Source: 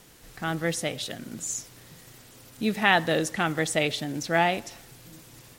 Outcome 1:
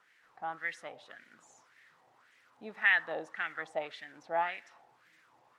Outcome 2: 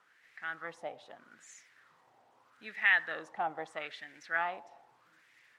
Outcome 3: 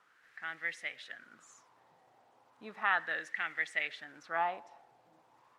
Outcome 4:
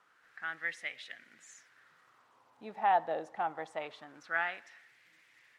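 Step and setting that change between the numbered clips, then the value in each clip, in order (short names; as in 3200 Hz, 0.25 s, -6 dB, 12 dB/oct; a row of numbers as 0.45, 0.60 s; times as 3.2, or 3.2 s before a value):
wah, rate: 1.8, 0.79, 0.35, 0.24 Hz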